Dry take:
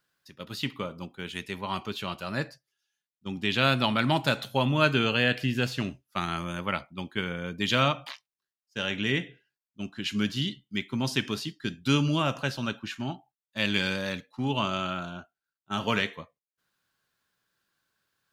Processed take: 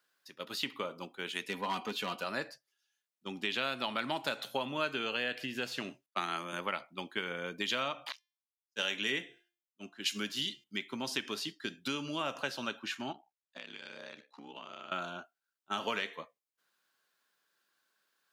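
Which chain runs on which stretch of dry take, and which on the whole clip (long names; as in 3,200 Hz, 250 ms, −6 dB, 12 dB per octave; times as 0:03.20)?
0:01.47–0:02.24: low-shelf EQ 400 Hz +6 dB + comb filter 4.1 ms, depth 45% + hard clipping −23.5 dBFS
0:06.06–0:06.53: high-pass filter 150 Hz 24 dB per octave + multiband upward and downward expander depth 100%
0:08.12–0:10.64: high-shelf EQ 4,500 Hz +11 dB + hum removal 348.3 Hz, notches 27 + multiband upward and downward expander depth 100%
0:13.12–0:14.92: ring modulation 33 Hz + band-pass filter 140–7,100 Hz + downward compressor 12 to 1, threshold −41 dBFS
whole clip: downward compressor, threshold −29 dBFS; high-pass filter 330 Hz 12 dB per octave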